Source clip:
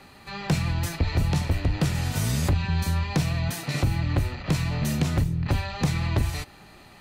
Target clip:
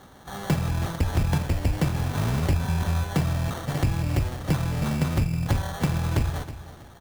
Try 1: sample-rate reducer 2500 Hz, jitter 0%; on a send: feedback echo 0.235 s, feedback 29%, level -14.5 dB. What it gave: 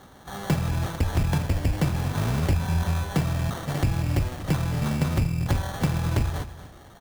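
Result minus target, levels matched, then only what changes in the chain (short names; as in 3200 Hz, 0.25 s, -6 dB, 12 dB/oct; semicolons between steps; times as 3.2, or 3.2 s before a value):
echo 86 ms early
change: feedback echo 0.321 s, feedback 29%, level -14.5 dB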